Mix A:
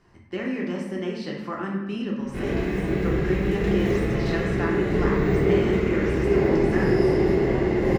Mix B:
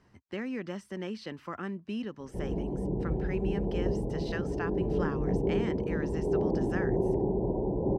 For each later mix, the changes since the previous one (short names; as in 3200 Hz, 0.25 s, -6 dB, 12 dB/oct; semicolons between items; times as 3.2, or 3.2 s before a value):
background: add Chebyshev low-pass 1000 Hz, order 8; reverb: off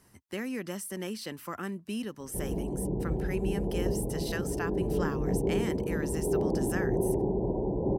speech: remove air absorption 170 m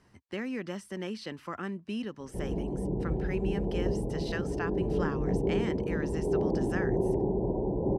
master: add LPF 4500 Hz 12 dB/oct